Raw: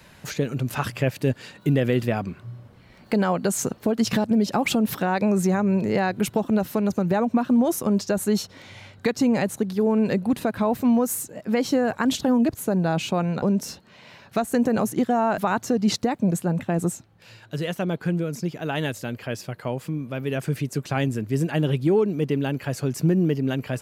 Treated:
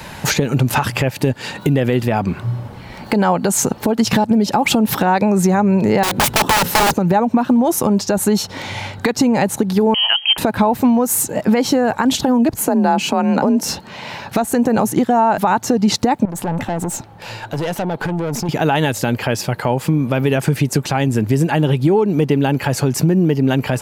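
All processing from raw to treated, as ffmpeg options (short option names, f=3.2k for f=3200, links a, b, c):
-filter_complex "[0:a]asettb=1/sr,asplit=3[a][b][c];[a]atrim=end=6.034[d];[b]atrim=start=6.03:end=6.94,asetpts=PTS-STARTPTS,afade=t=in:d=0.004:c=qsin,afade=t=out:st=0.906:d=0.004:c=qsin,aeval=exprs='(mod(14.1*val(0)+1,2)-1)/14.1':c=same,bandreject=f=60:t=h:w=6,bandreject=f=120:t=h:w=6,bandreject=f=180:t=h:w=6,bandreject=f=240:t=h:w=6,bandreject=f=300:t=h:w=6,bandreject=f=360:t=h:w=6,bandreject=f=420:t=h:w=6,bandreject=f=480:t=h:w=6,bandreject=f=540:t=h:w=6[e];[c]atrim=start=6.936[f];[d][e]acrossfade=d=0.004:c1=hsin:c2=qsin[g];[g][f]acrossfade=d=0.004:c1=qsin:c2=hsin,asettb=1/sr,asplit=3[h][i][j];[h]atrim=end=9.944[k];[i]atrim=start=9.94:end=10.38,asetpts=PTS-STARTPTS,afade=t=in:d=0.004:c=qsin,afade=t=out:st=0.436:d=0.004:c=qsin,highpass=f=290:w=0.5412,highpass=f=290:w=1.3066,lowpass=f=2.9k:t=q:w=0.5098,lowpass=f=2.9k:t=q:w=0.6013,lowpass=f=2.9k:t=q:w=0.9,lowpass=f=2.9k:t=q:w=2.563,afreqshift=-3400[l];[j]atrim=start=10.376[m];[k][l]acrossfade=d=0.004:c1=hsin:c2=qsin[n];[n][m]acrossfade=d=0.004:c1=qsin:c2=hsin,asettb=1/sr,asplit=3[o][p][q];[o]atrim=end=12.544[r];[p]atrim=start=12.54:end=13.63,asetpts=PTS-STARTPTS,afade=t=in:d=0.004:c=qsin,afade=t=out:st=1.086:d=0.004:c=qsin,bandreject=f=3.6k:w=7.5,afreqshift=37[s];[q]atrim=start=13.626[t];[r][s]acrossfade=d=0.004:c1=hsin:c2=qsin[u];[u][t]acrossfade=d=0.004:c1=qsin:c2=hsin,asettb=1/sr,asplit=3[v][w][x];[v]atrim=end=16.254[y];[w]atrim=start=16.25:end=18.49,asetpts=PTS-STARTPTS,afade=t=in:d=0.004:c=qsin,afade=t=out:st=2.236:d=0.004:c=qsin,equalizer=f=710:t=o:w=2:g=5,acompressor=threshold=-29dB:ratio=10:attack=3.2:release=140:knee=1:detection=peak,aeval=exprs='(tanh(50.1*val(0)+0.35)-tanh(0.35))/50.1':c=same[z];[x]atrim=start=18.486[aa];[y][z]acrossfade=d=0.004:c1=hsin:c2=qsin[ab];[ab][aa]acrossfade=d=0.004:c1=qsin:c2=hsin,equalizer=f=860:t=o:w=0.27:g=9,acompressor=threshold=-27dB:ratio=10,alimiter=level_in=20dB:limit=-1dB:release=50:level=0:latency=1,volume=-3.5dB"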